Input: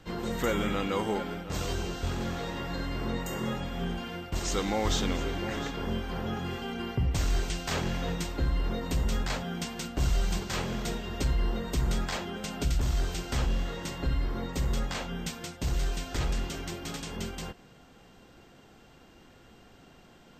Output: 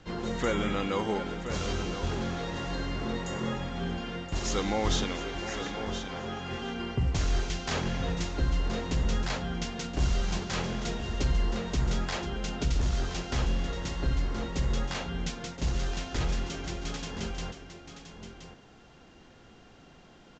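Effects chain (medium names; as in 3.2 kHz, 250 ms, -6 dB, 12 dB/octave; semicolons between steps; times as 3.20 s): 5.04–6.51 s: bass shelf 270 Hz -8.5 dB; delay 1023 ms -10 dB; µ-law 128 kbps 16 kHz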